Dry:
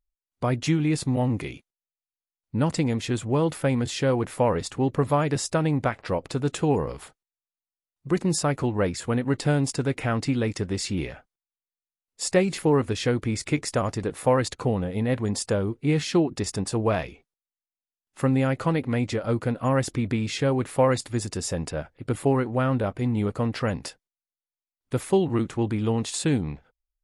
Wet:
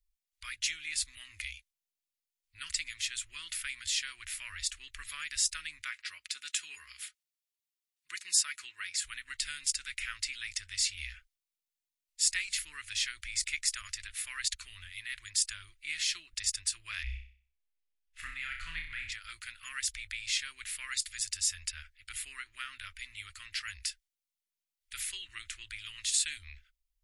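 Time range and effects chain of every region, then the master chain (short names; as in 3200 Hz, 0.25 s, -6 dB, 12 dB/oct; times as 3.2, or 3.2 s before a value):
5.83–9.04 HPF 230 Hz + comb 4.8 ms, depth 32%
17.03–19.12 tone controls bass +11 dB, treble -13 dB + flutter echo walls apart 5.4 m, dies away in 0.45 s
whole clip: inverse Chebyshev band-stop 120–850 Hz, stop band 50 dB; dynamic EQ 2400 Hz, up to -3 dB, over -43 dBFS, Q 0.78; gain +3 dB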